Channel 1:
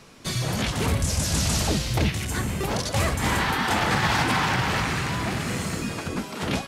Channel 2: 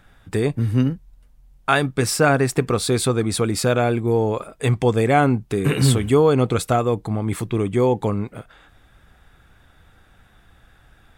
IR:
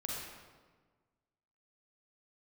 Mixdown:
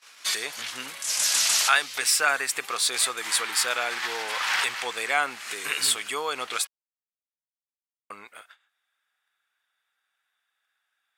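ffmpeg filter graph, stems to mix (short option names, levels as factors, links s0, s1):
-filter_complex "[0:a]volume=1.12[s0];[1:a]volume=0.75,asplit=3[s1][s2][s3];[s1]atrim=end=6.65,asetpts=PTS-STARTPTS,afade=t=out:st=6.646:d=0.004:c=hsin[s4];[s2]atrim=start=6.65:end=8.1,asetpts=PTS-STARTPTS,volume=0[s5];[s3]atrim=start=8.1,asetpts=PTS-STARTPTS,afade=t=in:d=0.004:c=hsin[s6];[s4][s5][s6]concat=n=3:v=0:a=1,asplit=2[s7][s8];[s8]apad=whole_len=294176[s9];[s0][s9]sidechaincompress=threshold=0.0398:ratio=12:attack=5.8:release=348[s10];[s10][s7]amix=inputs=2:normalize=0,agate=range=0.112:threshold=0.00447:ratio=16:detection=peak,highpass=1500,acontrast=22"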